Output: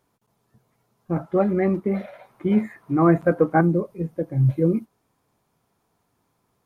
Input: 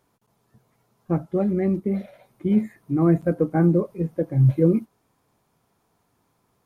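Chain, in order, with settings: 1.16–3.61 s: peaking EQ 1.2 kHz +13 dB 2.5 oct; trim -2 dB

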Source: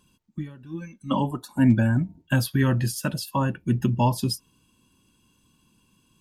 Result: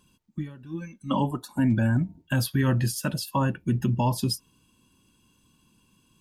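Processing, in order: peak limiter -14.5 dBFS, peak gain reduction 6.5 dB

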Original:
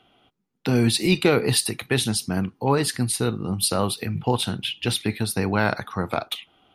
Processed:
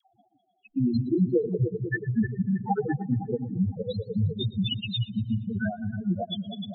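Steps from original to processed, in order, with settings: random holes in the spectrogram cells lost 22%; reverb removal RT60 0.51 s; compression 5:1, threshold -22 dBFS, peak gain reduction 8.5 dB; low-pass that closes with the level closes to 1.4 kHz, closed at -18.5 dBFS; reverb removal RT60 1 s; multi-head delay 102 ms, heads second and third, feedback 74%, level -10.5 dB; peak limiter -17.5 dBFS, peak gain reduction 6.5 dB; loudest bins only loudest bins 2; 1.48–3.71 s: Chebyshev low-pass 1.8 kHz, order 8; phase dispersion lows, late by 119 ms, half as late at 620 Hz; modulated delay 117 ms, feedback 50%, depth 81 cents, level -20.5 dB; trim +8.5 dB

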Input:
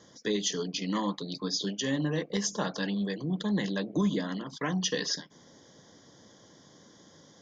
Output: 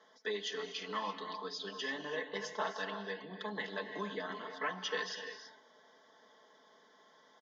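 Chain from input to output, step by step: band-pass 660–2500 Hz; comb 4.6 ms, depth 70%; gated-style reverb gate 360 ms rising, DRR 7 dB; trim -2 dB

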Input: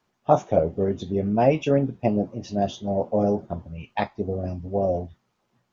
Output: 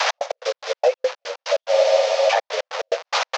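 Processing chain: one-bit delta coder 32 kbps, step -28.5 dBFS; upward compressor, threshold -24 dBFS; delay 93 ms -21.5 dB; compression 6:1, threshold -24 dBFS, peak gain reduction 11.5 dB; expander -26 dBFS; granular stretch 0.59×, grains 158 ms; frequency shift -41 Hz; steep high-pass 480 Hz 96 dB/octave; trance gate "x.x.x.x." 144 bpm -60 dB; loudness maximiser +24 dB; spectral freeze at 1.74 s, 0.54 s; trim -7 dB

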